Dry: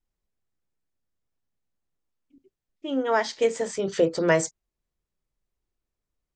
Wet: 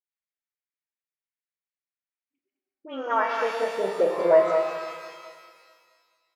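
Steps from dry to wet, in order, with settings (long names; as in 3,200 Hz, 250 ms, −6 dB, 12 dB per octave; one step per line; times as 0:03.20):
noise gate −45 dBFS, range −13 dB
band-pass filter sweep 2,100 Hz → 710 Hz, 0:02.30–0:03.83
in parallel at +2 dB: downward compressor, threshold −34 dBFS, peak gain reduction 13.5 dB
on the sum: high-shelf EQ 6,600 Hz −8.5 dB
all-pass dispersion highs, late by 55 ms, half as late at 1,200 Hz
on a send: repeating echo 209 ms, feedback 33%, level −7 dB
on the sum: reverb with rising layers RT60 1.8 s, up +12 semitones, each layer −8 dB, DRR 3.5 dB
level +1.5 dB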